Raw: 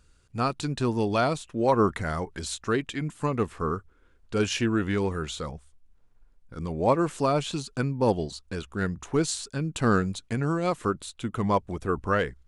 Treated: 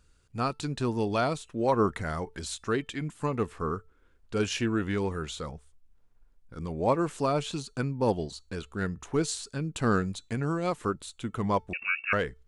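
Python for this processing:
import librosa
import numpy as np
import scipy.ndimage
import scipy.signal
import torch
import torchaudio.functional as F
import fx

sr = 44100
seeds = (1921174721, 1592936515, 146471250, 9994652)

y = fx.comb_fb(x, sr, f0_hz=440.0, decay_s=0.29, harmonics='all', damping=0.0, mix_pct=30)
y = fx.freq_invert(y, sr, carrier_hz=2700, at=(11.73, 12.13))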